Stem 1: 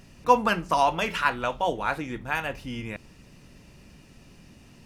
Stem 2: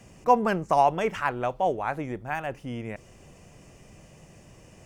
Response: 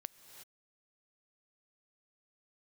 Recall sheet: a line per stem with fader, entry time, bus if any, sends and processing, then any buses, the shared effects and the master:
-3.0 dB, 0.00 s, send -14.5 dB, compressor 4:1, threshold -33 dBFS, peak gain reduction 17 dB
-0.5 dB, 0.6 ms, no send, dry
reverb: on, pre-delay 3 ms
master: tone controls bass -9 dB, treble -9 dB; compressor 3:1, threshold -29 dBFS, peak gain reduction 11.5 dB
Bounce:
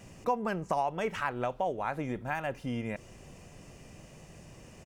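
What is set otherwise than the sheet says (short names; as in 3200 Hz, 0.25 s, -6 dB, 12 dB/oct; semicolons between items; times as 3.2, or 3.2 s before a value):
stem 1 -3.0 dB -> -9.0 dB; master: missing tone controls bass -9 dB, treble -9 dB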